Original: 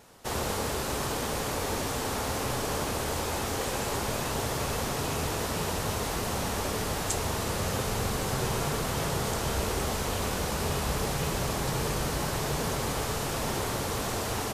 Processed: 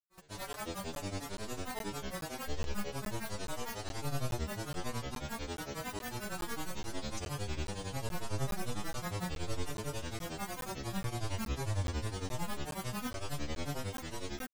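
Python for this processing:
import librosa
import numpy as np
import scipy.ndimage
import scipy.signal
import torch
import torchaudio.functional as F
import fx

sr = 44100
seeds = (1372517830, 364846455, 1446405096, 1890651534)

y = fx.low_shelf(x, sr, hz=95.0, db=7.5)
y = fx.stiff_resonator(y, sr, f0_hz=130.0, decay_s=0.83, stiffness=0.002)
y = fx.granulator(y, sr, seeds[0], grain_ms=132.0, per_s=11.0, spray_ms=100.0, spread_st=12)
y = fx.buffer_crackle(y, sr, first_s=0.53, period_s=0.42, block=512, kind='zero')
y = F.gain(torch.from_numpy(y), 7.5).numpy()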